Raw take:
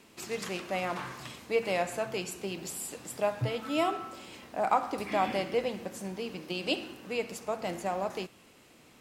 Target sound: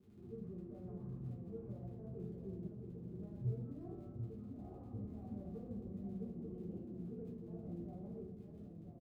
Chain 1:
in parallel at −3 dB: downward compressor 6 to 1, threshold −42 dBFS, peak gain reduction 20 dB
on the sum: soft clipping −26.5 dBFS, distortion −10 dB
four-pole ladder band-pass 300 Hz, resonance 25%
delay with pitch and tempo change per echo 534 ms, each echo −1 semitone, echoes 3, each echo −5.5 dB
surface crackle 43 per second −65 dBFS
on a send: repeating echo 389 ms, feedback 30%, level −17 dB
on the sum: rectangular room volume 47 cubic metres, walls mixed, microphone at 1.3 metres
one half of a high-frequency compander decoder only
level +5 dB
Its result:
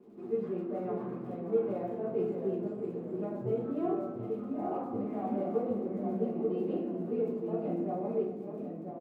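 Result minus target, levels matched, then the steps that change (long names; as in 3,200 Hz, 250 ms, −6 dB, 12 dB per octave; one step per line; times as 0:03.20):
125 Hz band −11.0 dB; soft clipping: distortion −6 dB
change: soft clipping −35 dBFS, distortion −4 dB
change: four-pole ladder band-pass 95 Hz, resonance 25%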